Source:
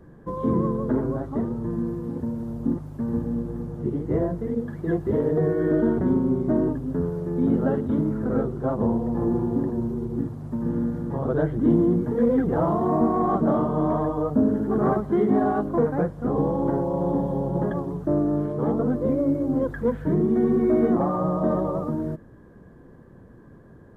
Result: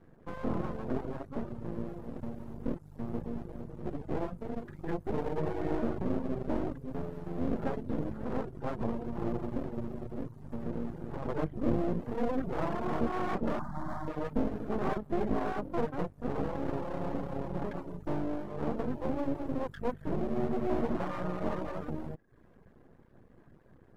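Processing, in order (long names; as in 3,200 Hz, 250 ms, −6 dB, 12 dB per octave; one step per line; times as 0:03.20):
half-wave rectification
0:13.59–0:14.08: phaser with its sweep stopped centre 1,100 Hz, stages 4
reverb reduction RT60 0.51 s
level −5.5 dB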